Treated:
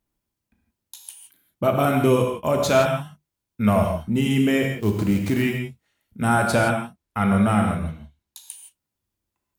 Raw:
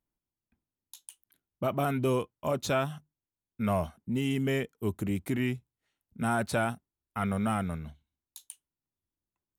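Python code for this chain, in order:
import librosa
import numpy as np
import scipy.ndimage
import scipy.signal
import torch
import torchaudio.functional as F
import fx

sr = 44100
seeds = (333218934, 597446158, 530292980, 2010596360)

y = fx.sample_hold(x, sr, seeds[0], rate_hz=15000.0, jitter_pct=20, at=(4.62, 5.41), fade=0.02)
y = fx.high_shelf(y, sr, hz=9400.0, db=-6.0, at=(6.56, 8.44))
y = fx.rev_gated(y, sr, seeds[1], gate_ms=190, shape='flat', drr_db=2.0)
y = F.gain(torch.from_numpy(y), 7.5).numpy()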